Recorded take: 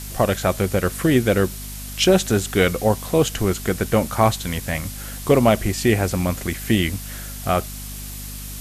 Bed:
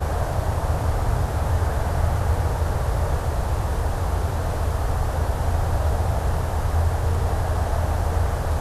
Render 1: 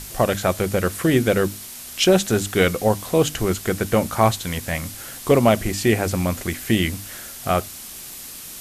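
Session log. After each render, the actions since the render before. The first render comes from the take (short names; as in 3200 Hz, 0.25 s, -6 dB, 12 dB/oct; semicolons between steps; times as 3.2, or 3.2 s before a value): notches 50/100/150/200/250/300 Hz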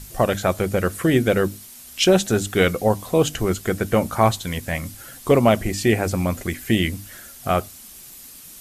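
denoiser 8 dB, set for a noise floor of -37 dBFS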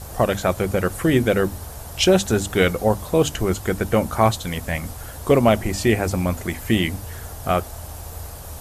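add bed -13.5 dB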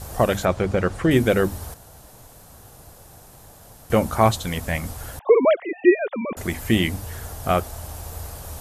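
0.45–1.11 air absorption 90 m; 1.74–3.9 room tone; 5.19–6.37 sine-wave speech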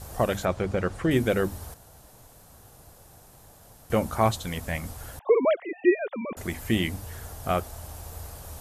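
gain -5.5 dB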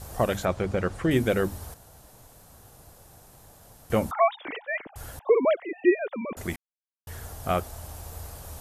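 4.11–4.96 sine-wave speech; 6.56–7.07 mute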